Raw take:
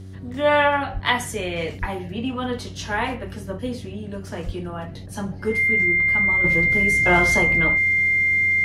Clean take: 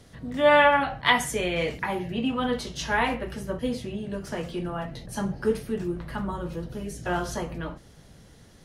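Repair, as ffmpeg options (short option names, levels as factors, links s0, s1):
-filter_complex "[0:a]bandreject=f=94.9:t=h:w=4,bandreject=f=189.8:t=h:w=4,bandreject=f=284.7:t=h:w=4,bandreject=f=379.6:t=h:w=4,bandreject=f=2100:w=30,asplit=3[s0][s1][s2];[s0]afade=t=out:st=0.93:d=0.02[s3];[s1]highpass=f=140:w=0.5412,highpass=f=140:w=1.3066,afade=t=in:st=0.93:d=0.02,afade=t=out:st=1.05:d=0.02[s4];[s2]afade=t=in:st=1.05:d=0.02[s5];[s3][s4][s5]amix=inputs=3:normalize=0,asplit=3[s6][s7][s8];[s6]afade=t=out:st=1.8:d=0.02[s9];[s7]highpass=f=140:w=0.5412,highpass=f=140:w=1.3066,afade=t=in:st=1.8:d=0.02,afade=t=out:st=1.92:d=0.02[s10];[s8]afade=t=in:st=1.92:d=0.02[s11];[s9][s10][s11]amix=inputs=3:normalize=0,asplit=3[s12][s13][s14];[s12]afade=t=out:st=4.45:d=0.02[s15];[s13]highpass=f=140:w=0.5412,highpass=f=140:w=1.3066,afade=t=in:st=4.45:d=0.02,afade=t=out:st=4.57:d=0.02[s16];[s14]afade=t=in:st=4.57:d=0.02[s17];[s15][s16][s17]amix=inputs=3:normalize=0,asetnsamples=n=441:p=0,asendcmd='6.44 volume volume -8.5dB',volume=1"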